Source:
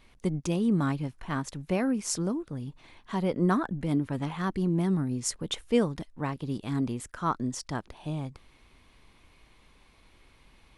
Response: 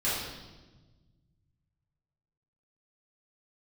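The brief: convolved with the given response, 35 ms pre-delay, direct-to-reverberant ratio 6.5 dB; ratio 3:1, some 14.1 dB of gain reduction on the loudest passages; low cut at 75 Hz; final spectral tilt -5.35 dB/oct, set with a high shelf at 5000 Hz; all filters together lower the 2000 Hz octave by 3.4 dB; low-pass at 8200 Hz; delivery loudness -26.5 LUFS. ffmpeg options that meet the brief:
-filter_complex "[0:a]highpass=75,lowpass=8.2k,equalizer=f=2k:t=o:g=-5.5,highshelf=f=5k:g=5.5,acompressor=threshold=-40dB:ratio=3,asplit=2[a][b];[1:a]atrim=start_sample=2205,adelay=35[c];[b][c]afir=irnorm=-1:irlink=0,volume=-16.5dB[d];[a][d]amix=inputs=2:normalize=0,volume=13.5dB"

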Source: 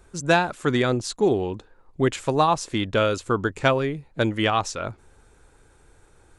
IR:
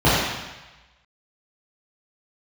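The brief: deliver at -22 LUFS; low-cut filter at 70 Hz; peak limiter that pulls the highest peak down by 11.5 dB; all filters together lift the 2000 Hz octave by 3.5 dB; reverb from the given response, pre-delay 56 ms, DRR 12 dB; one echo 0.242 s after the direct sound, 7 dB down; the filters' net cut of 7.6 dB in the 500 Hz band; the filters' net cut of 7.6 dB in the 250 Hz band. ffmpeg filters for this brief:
-filter_complex "[0:a]highpass=70,equalizer=f=250:t=o:g=-7.5,equalizer=f=500:t=o:g=-8,equalizer=f=2k:t=o:g=5.5,alimiter=limit=-13.5dB:level=0:latency=1,aecho=1:1:242:0.447,asplit=2[a][b];[1:a]atrim=start_sample=2205,adelay=56[c];[b][c]afir=irnorm=-1:irlink=0,volume=-36.5dB[d];[a][d]amix=inputs=2:normalize=0,volume=4.5dB"

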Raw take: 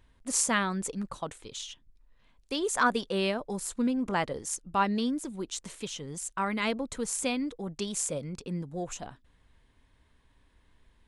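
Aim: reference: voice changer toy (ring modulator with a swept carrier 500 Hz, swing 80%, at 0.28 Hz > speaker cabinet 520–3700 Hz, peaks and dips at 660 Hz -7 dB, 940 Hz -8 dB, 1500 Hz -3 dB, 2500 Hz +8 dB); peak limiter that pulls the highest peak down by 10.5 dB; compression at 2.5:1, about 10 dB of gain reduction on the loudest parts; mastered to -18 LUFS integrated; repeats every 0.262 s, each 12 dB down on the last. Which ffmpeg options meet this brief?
-af "acompressor=threshold=-35dB:ratio=2.5,alimiter=level_in=5.5dB:limit=-24dB:level=0:latency=1,volume=-5.5dB,aecho=1:1:262|524|786:0.251|0.0628|0.0157,aeval=exprs='val(0)*sin(2*PI*500*n/s+500*0.8/0.28*sin(2*PI*0.28*n/s))':c=same,highpass=520,equalizer=f=660:t=q:w=4:g=-7,equalizer=f=940:t=q:w=4:g=-8,equalizer=f=1.5k:t=q:w=4:g=-3,equalizer=f=2.5k:t=q:w=4:g=8,lowpass=f=3.7k:w=0.5412,lowpass=f=3.7k:w=1.3066,volume=28.5dB"

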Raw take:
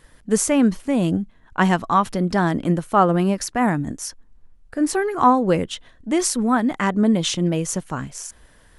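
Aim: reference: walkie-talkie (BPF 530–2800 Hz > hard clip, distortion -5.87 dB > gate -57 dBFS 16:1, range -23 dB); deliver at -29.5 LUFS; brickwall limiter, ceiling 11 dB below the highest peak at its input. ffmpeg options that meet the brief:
-af "alimiter=limit=-14.5dB:level=0:latency=1,highpass=530,lowpass=2.8k,asoftclip=type=hard:threshold=-29.5dB,agate=range=-23dB:threshold=-57dB:ratio=16,volume=5.5dB"

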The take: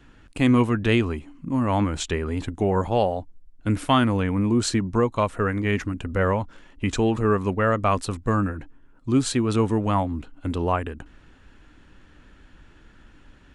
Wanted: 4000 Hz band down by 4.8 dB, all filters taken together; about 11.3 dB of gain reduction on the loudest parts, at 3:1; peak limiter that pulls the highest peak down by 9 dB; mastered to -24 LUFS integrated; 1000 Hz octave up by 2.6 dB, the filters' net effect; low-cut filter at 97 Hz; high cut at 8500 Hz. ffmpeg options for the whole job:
-af "highpass=97,lowpass=8.5k,equalizer=f=1k:t=o:g=3.5,equalizer=f=4k:t=o:g=-6.5,acompressor=threshold=-30dB:ratio=3,volume=12dB,alimiter=limit=-12.5dB:level=0:latency=1"

